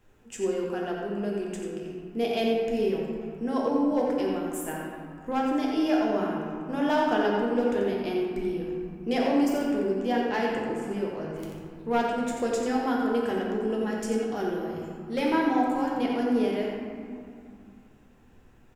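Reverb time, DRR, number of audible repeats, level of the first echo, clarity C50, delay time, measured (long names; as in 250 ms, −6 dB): 2.6 s, −3.5 dB, 1, −6.0 dB, −0.5 dB, 88 ms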